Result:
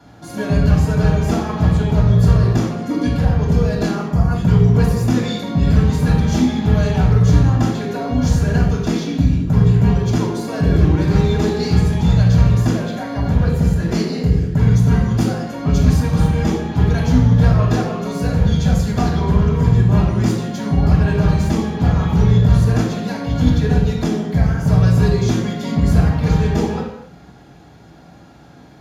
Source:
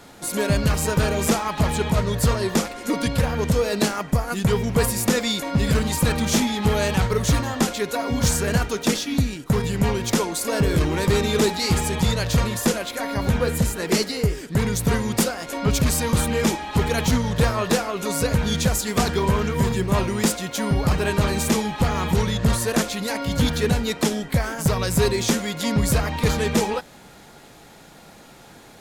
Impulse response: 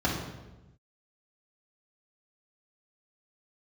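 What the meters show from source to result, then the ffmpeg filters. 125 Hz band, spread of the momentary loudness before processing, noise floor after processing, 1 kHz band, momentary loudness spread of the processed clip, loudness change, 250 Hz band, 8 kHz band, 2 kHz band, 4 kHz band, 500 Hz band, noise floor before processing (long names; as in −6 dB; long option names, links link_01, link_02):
+10.0 dB, 4 LU, −43 dBFS, 0.0 dB, 7 LU, +6.0 dB, +6.0 dB, −9.0 dB, −2.5 dB, −5.0 dB, +0.5 dB, −46 dBFS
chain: -filter_complex "[1:a]atrim=start_sample=2205,afade=type=out:start_time=0.36:duration=0.01,atrim=end_sample=16317[link_01];[0:a][link_01]afir=irnorm=-1:irlink=0,volume=-13dB"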